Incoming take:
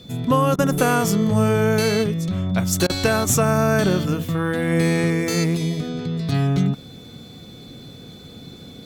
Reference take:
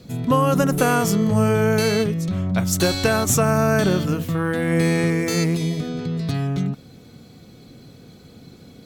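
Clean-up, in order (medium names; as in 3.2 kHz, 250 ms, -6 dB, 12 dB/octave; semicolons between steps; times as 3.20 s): band-stop 3.5 kHz, Q 30; interpolate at 0.56/2.87 s, 25 ms; gain correction -4 dB, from 6.32 s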